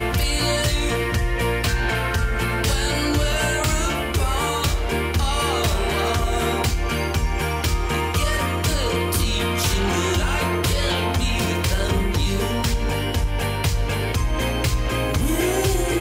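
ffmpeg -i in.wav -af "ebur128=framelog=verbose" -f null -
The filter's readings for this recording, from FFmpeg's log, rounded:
Integrated loudness:
  I:         -21.8 LUFS
  Threshold: -31.8 LUFS
Loudness range:
  LRA:         1.3 LU
  Threshold: -41.9 LUFS
  LRA low:   -22.6 LUFS
  LRA high:  -21.3 LUFS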